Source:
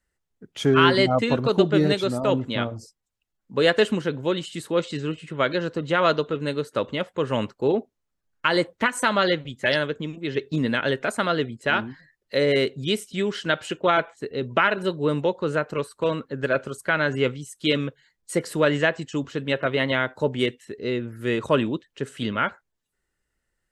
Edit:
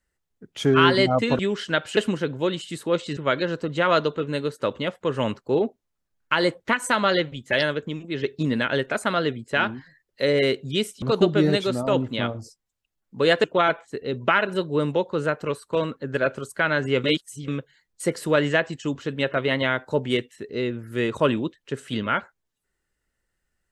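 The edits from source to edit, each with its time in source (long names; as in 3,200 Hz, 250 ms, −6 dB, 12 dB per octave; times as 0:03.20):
0:01.39–0:03.81: swap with 0:13.15–0:13.73
0:05.01–0:05.30: remove
0:17.33–0:17.77: reverse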